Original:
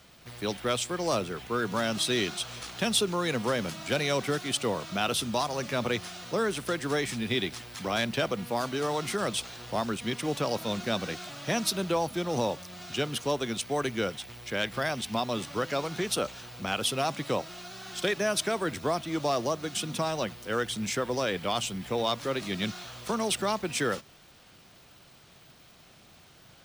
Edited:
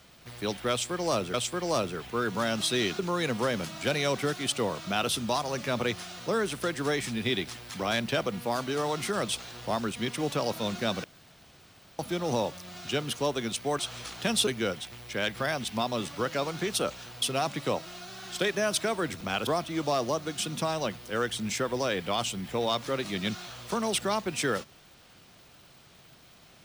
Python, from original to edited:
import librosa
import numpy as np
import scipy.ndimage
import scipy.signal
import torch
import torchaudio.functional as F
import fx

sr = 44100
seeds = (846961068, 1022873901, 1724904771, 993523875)

y = fx.edit(x, sr, fx.repeat(start_s=0.71, length_s=0.63, count=2),
    fx.move(start_s=2.36, length_s=0.68, to_s=13.84),
    fx.room_tone_fill(start_s=11.09, length_s=0.95),
    fx.move(start_s=16.59, length_s=0.26, to_s=18.84), tone=tone)